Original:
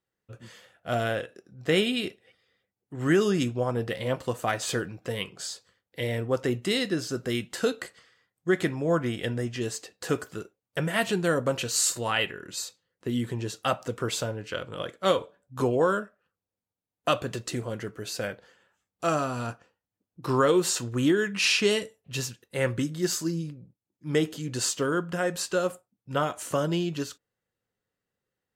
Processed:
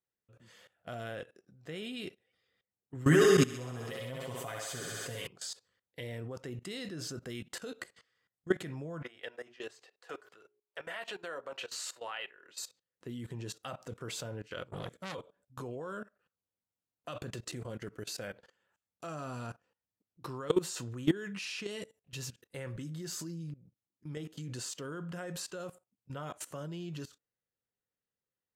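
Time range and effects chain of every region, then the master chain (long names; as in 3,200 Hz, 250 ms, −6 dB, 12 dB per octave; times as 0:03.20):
0:02.95–0:05.27: high-shelf EQ 6,900 Hz +8 dB + comb filter 7.3 ms, depth 84% + feedback echo with a high-pass in the loop 65 ms, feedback 77%, high-pass 310 Hz, level −3 dB
0:09.02–0:12.58: three-way crossover with the lows and the highs turned down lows −23 dB, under 450 Hz, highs −12 dB, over 4,300 Hz + mains-hum notches 60/120/180/240/300/360/420 Hz
0:14.71–0:15.15: bass and treble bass +12 dB, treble +9 dB + saturating transformer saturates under 3,600 Hz
whole clip: dynamic equaliser 150 Hz, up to +6 dB, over −45 dBFS, Q 3.5; output level in coarse steps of 19 dB; level −2.5 dB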